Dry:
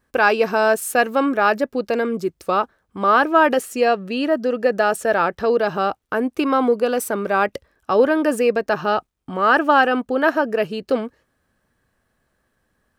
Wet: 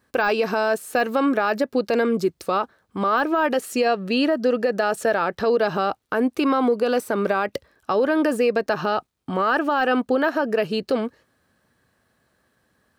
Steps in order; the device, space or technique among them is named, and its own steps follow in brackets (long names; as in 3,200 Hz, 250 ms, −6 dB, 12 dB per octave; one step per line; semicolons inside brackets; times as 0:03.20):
broadcast voice chain (high-pass filter 81 Hz; de-essing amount 60%; downward compressor 4 to 1, threshold −18 dBFS, peak gain reduction 7.5 dB; parametric band 4,200 Hz +4 dB 0.45 octaves; brickwall limiter −14.5 dBFS, peak gain reduction 6 dB)
level +3 dB